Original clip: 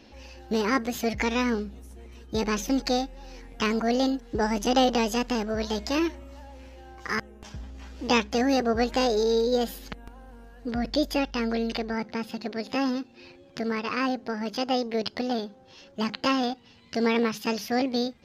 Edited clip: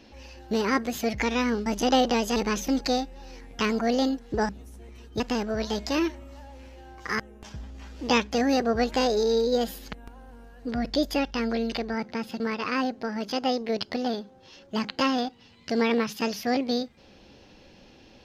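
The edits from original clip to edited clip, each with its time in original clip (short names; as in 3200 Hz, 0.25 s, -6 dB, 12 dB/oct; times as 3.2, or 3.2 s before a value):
1.66–2.37 swap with 4.5–5.2
12.4–13.65 cut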